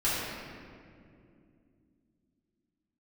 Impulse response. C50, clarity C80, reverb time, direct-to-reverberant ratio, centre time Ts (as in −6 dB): −3.0 dB, −0.5 dB, 2.5 s, −11.5 dB, 139 ms